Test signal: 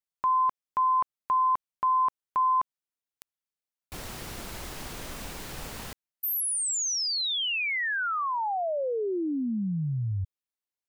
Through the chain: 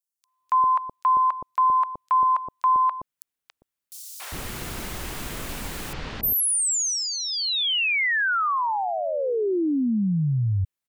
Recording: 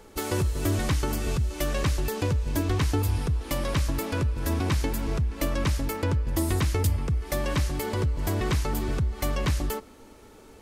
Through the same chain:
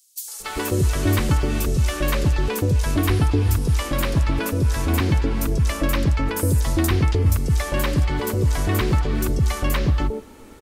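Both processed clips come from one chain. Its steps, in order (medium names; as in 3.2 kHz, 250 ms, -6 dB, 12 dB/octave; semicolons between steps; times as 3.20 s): three bands offset in time highs, mids, lows 280/400 ms, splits 670/5000 Hz; trim +6.5 dB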